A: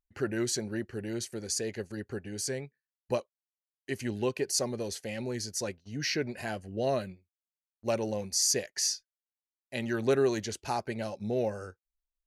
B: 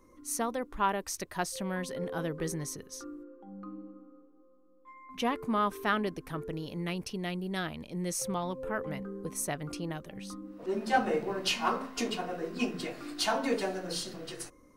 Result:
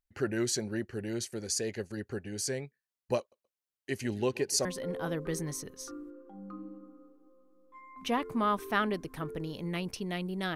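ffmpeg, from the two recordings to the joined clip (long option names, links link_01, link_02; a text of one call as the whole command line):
ffmpeg -i cue0.wav -i cue1.wav -filter_complex "[0:a]asettb=1/sr,asplit=3[link_01][link_02][link_03];[link_01]atrim=end=3.194[link_04];[link_02]atrim=start=3.19:end=4.65,asetpts=PTS-STARTPTS,afade=type=in:duration=0.004:curve=qsin,afade=type=out:start_time=1.456:duration=0.004:curve=qsin,aecho=1:1:127|254:0.0891|0.0232,atrim=end_sample=64386[link_05];[link_03]atrim=start=4.646[link_06];[link_04][link_05]acrossfade=duration=0.004:curve1=hsin:curve2=qsin[link_07];[link_07][link_06]acrossfade=duration=0.004:curve1=qsin:curve2=hsin,apad=whole_dur=10.55,atrim=end=10.55,atrim=end=4.652[link_08];[1:a]atrim=start=1.778:end=7.68[link_09];[link_08][link_09]acrossfade=duration=0.004:curve1=hsin:curve2=hsin" out.wav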